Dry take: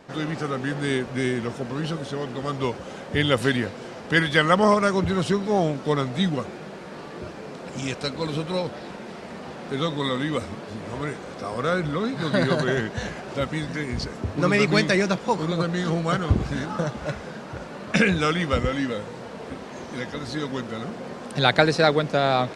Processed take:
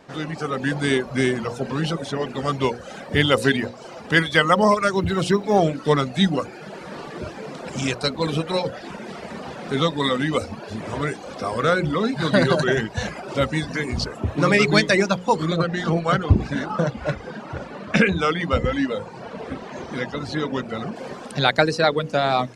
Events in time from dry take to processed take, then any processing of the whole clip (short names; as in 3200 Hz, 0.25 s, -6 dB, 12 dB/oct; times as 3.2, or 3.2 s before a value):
2.94–5.58 short-mantissa float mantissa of 6-bit
15.56–20.96 LPF 3500 Hz 6 dB/oct
whole clip: reverb removal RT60 0.88 s; notches 60/120/180/240/300/360/420/480/540 Hz; AGC gain up to 6 dB